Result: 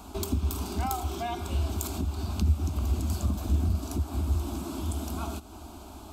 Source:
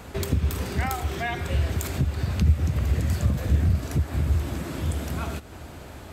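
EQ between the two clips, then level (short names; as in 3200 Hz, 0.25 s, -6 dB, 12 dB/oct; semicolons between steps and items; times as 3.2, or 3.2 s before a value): fixed phaser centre 500 Hz, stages 6; 0.0 dB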